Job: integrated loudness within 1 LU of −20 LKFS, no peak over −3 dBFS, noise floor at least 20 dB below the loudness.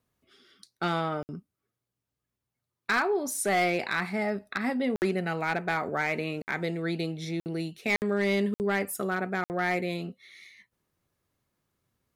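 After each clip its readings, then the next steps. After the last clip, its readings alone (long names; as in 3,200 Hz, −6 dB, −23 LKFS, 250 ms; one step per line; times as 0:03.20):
share of clipped samples 0.4%; peaks flattened at −19.0 dBFS; number of dropouts 7; longest dropout 59 ms; integrated loudness −29.5 LKFS; sample peak −19.0 dBFS; target loudness −20.0 LKFS
→ clipped peaks rebuilt −19 dBFS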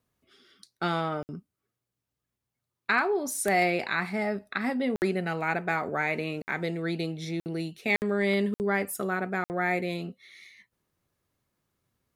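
share of clipped samples 0.0%; number of dropouts 7; longest dropout 59 ms
→ repair the gap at 0:01.23/0:04.96/0:06.42/0:07.40/0:07.96/0:08.54/0:09.44, 59 ms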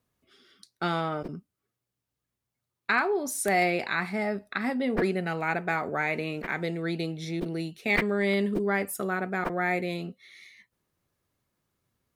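number of dropouts 0; integrated loudness −28.5 LKFS; sample peak −10.0 dBFS; target loudness −20.0 LKFS
→ level +8.5 dB
brickwall limiter −3 dBFS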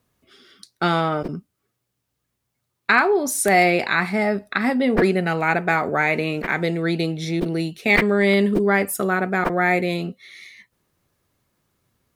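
integrated loudness −20.0 LKFS; sample peak −3.0 dBFS; background noise floor −77 dBFS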